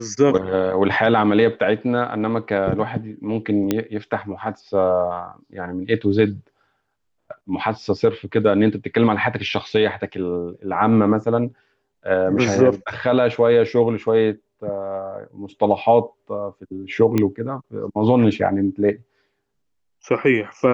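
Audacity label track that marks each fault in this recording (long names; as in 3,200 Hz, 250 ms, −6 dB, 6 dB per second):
3.710000	3.710000	click −6 dBFS
17.180000	17.180000	click −7 dBFS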